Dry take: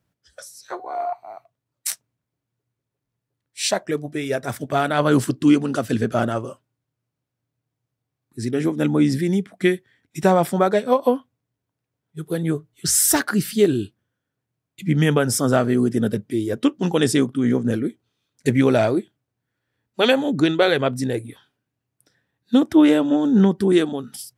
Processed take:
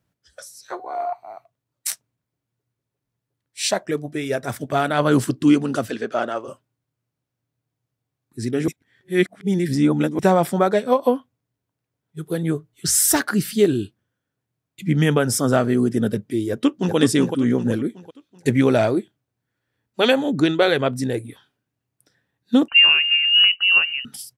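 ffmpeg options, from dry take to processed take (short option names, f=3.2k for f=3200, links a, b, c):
-filter_complex "[0:a]asplit=3[a][b][c];[a]afade=t=out:st=5.89:d=0.02[d];[b]highpass=390,lowpass=5.7k,afade=t=in:st=5.89:d=0.02,afade=t=out:st=6.47:d=0.02[e];[c]afade=t=in:st=6.47:d=0.02[f];[d][e][f]amix=inputs=3:normalize=0,asplit=2[g][h];[h]afade=t=in:st=16.5:d=0.01,afade=t=out:st=16.96:d=0.01,aecho=0:1:380|760|1140|1520|1900:0.562341|0.224937|0.0899746|0.0359898|0.0143959[i];[g][i]amix=inputs=2:normalize=0,asettb=1/sr,asplit=3[j][k][l];[j]atrim=end=22.684[m];[k]atrim=start=22.68:end=24.05,asetpts=PTS-STARTPTS,afade=t=in:d=0.004:c=qsin,afade=t=out:st=1.366:d=0.004:c=qsin,lowpass=f=2.6k:t=q:w=0.5098,lowpass=f=2.6k:t=q:w=0.6013,lowpass=f=2.6k:t=q:w=0.9,lowpass=f=2.6k:t=q:w=2.563,afreqshift=-3100[n];[l]atrim=start=24.046[o];[m][n]acrossfade=d=0.004:c1=hsin:c2=qsin[p];[p][o]acrossfade=d=0.004:c1=qsin:c2=hsin,asplit=3[q][r][s];[q]atrim=end=8.682[t];[r]atrim=start=8.678:end=10.192,asetpts=PTS-STARTPTS,areverse[u];[s]atrim=start=10.188[v];[t][u]acrossfade=d=0.004:c1=hsin:c2=hsin[w];[w][v]acrossfade=d=0.004:c1=hsin:c2=hsin"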